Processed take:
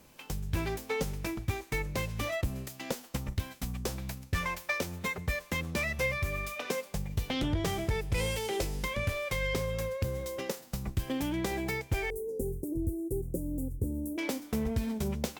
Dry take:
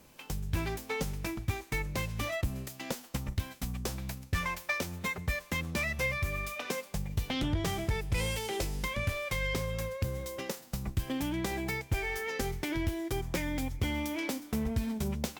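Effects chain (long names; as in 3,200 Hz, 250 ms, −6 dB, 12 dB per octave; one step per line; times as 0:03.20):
0:12.10–0:14.18: elliptic band-stop filter 460–9,000 Hz, stop band 60 dB
dynamic equaliser 470 Hz, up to +4 dB, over −47 dBFS, Q 1.8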